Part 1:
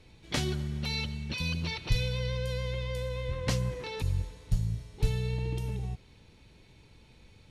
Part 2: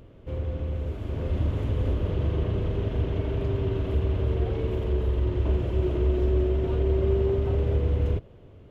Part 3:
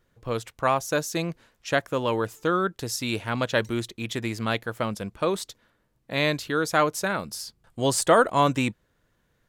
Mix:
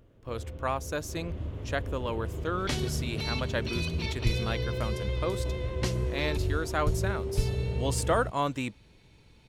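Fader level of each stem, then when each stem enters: -1.0 dB, -10.0 dB, -8.0 dB; 2.35 s, 0.00 s, 0.00 s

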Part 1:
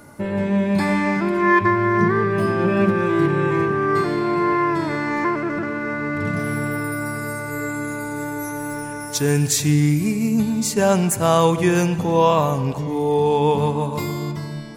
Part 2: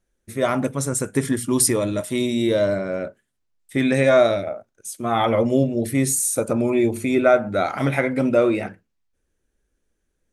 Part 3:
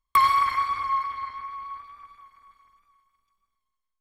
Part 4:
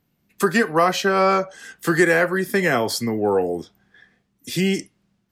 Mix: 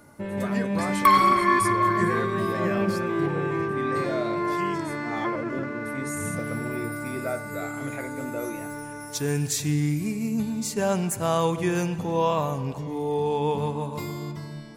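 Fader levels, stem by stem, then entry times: -7.5 dB, -15.5 dB, +1.5 dB, -16.0 dB; 0.00 s, 0.00 s, 0.90 s, 0.00 s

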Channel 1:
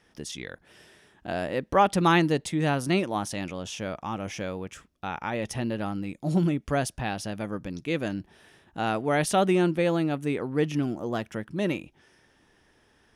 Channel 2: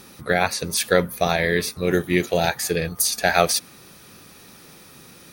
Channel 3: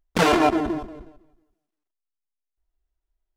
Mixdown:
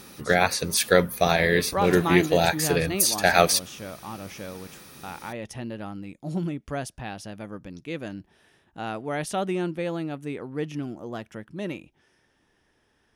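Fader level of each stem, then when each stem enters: -5.0 dB, -0.5 dB, -18.5 dB; 0.00 s, 0.00 s, 1.65 s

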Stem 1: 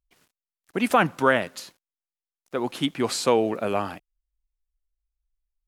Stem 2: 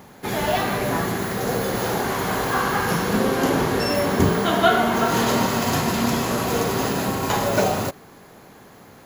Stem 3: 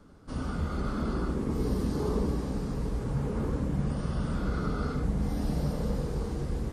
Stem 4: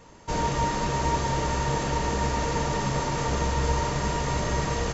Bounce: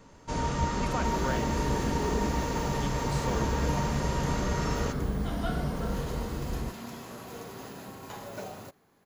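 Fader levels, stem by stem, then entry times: -16.5 dB, -20.0 dB, -2.0 dB, -5.5 dB; 0.00 s, 0.80 s, 0.00 s, 0.00 s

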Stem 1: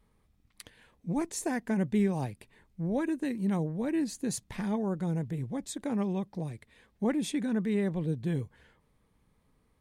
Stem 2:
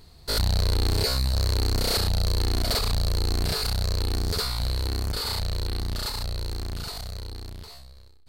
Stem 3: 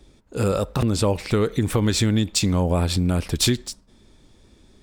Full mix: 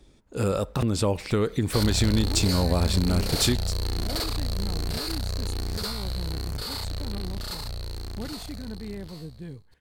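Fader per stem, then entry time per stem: -8.5 dB, -4.0 dB, -3.5 dB; 1.15 s, 1.45 s, 0.00 s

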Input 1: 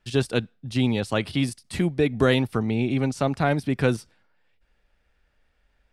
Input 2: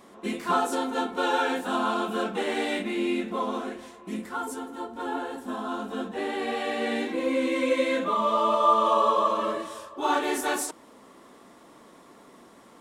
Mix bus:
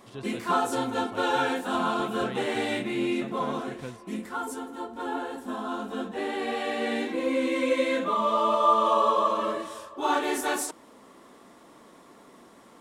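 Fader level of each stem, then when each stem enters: -18.5 dB, -0.5 dB; 0.00 s, 0.00 s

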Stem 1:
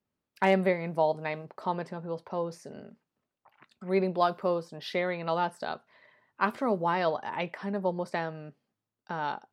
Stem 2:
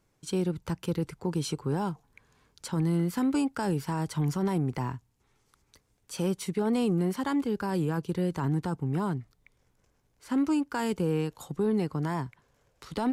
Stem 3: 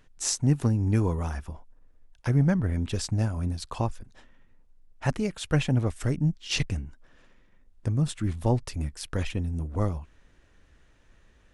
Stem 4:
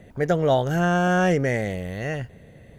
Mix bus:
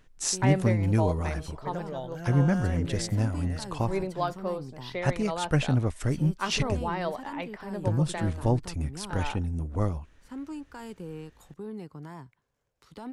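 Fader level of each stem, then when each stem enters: -4.0 dB, -12.0 dB, -0.5 dB, -17.0 dB; 0.00 s, 0.00 s, 0.00 s, 1.45 s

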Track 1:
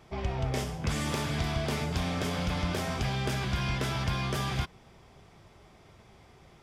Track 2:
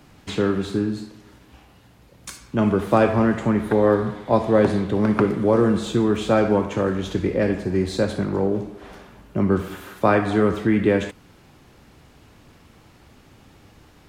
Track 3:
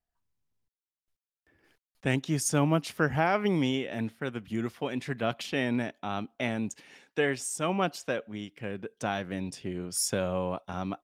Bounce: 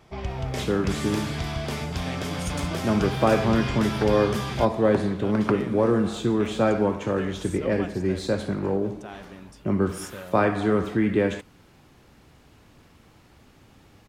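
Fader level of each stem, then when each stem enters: +1.0 dB, -3.5 dB, -10.0 dB; 0.00 s, 0.30 s, 0.00 s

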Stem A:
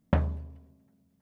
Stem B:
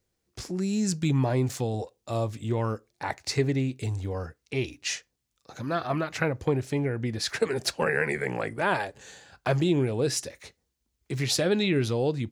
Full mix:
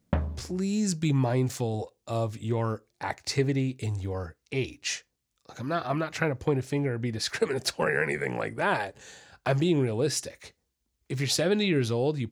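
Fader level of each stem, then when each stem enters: -2.0 dB, -0.5 dB; 0.00 s, 0.00 s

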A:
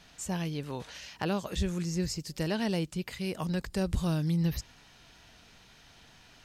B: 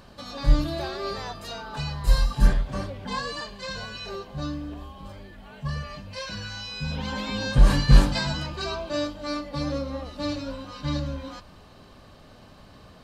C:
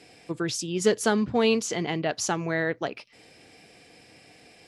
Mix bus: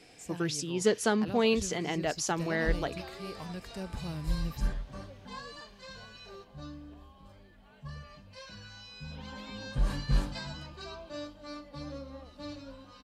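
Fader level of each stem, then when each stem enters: -9.5 dB, -13.0 dB, -4.0 dB; 0.00 s, 2.20 s, 0.00 s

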